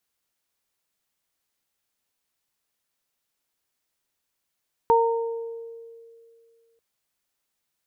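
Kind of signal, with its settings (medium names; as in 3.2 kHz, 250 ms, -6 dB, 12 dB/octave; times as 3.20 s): additive tone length 1.89 s, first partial 460 Hz, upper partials 2.5 dB, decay 2.41 s, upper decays 0.94 s, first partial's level -17 dB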